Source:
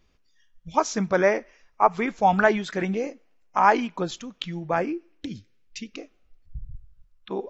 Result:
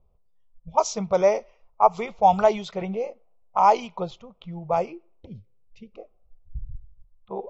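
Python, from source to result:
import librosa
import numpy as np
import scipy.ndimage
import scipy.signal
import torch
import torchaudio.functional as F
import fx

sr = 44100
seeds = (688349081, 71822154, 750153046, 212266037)

y = fx.fixed_phaser(x, sr, hz=690.0, stages=4)
y = fx.env_lowpass(y, sr, base_hz=870.0, full_db=-19.5)
y = y * 10.0 ** (3.0 / 20.0)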